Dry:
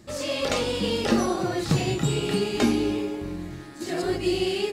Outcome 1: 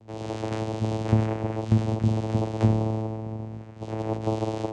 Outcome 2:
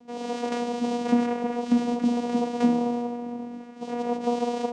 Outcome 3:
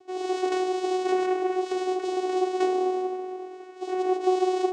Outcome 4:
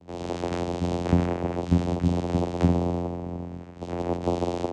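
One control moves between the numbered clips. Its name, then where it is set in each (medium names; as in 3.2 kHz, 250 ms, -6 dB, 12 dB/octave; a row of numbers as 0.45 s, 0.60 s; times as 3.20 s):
vocoder, frequency: 110 Hz, 240 Hz, 370 Hz, 87 Hz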